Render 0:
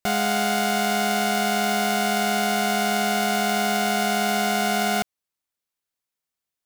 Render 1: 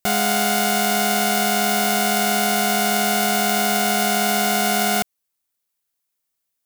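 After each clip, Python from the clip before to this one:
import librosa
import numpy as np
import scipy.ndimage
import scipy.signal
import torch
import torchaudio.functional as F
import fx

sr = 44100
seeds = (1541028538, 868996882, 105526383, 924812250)

y = fx.high_shelf(x, sr, hz=7500.0, db=9.5)
y = y * librosa.db_to_amplitude(2.0)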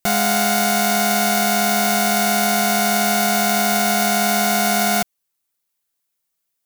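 y = x + 0.43 * np.pad(x, (int(5.9 * sr / 1000.0), 0))[:len(x)]
y = y * librosa.db_to_amplitude(1.0)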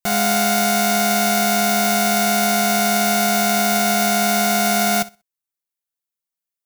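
y = fx.echo_feedback(x, sr, ms=63, feedback_pct=29, wet_db=-13.0)
y = fx.upward_expand(y, sr, threshold_db=-38.0, expansion=1.5)
y = y * librosa.db_to_amplitude(-1.0)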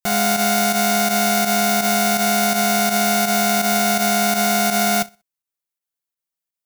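y = fx.volume_shaper(x, sr, bpm=83, per_beat=2, depth_db=-9, release_ms=69.0, shape='fast start')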